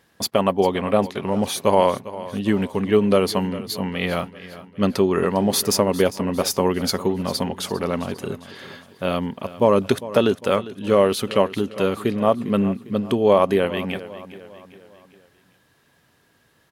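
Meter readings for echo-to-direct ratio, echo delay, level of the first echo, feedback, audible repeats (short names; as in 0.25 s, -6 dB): -15.0 dB, 0.402 s, -16.0 dB, 47%, 3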